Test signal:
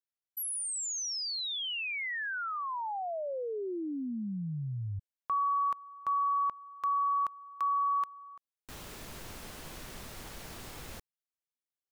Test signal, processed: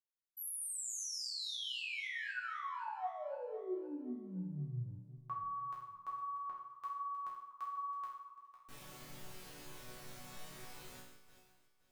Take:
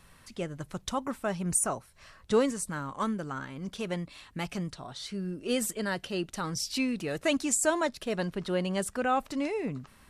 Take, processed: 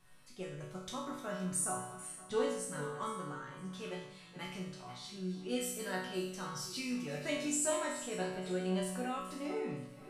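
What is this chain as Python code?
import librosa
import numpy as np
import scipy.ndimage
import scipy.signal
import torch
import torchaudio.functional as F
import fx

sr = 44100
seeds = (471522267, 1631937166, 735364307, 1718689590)

y = fx.reverse_delay_fb(x, sr, ms=259, feedback_pct=51, wet_db=-12.5)
y = fx.resonator_bank(y, sr, root=47, chord='minor', decay_s=0.71)
y = y * librosa.db_to_amplitude(11.0)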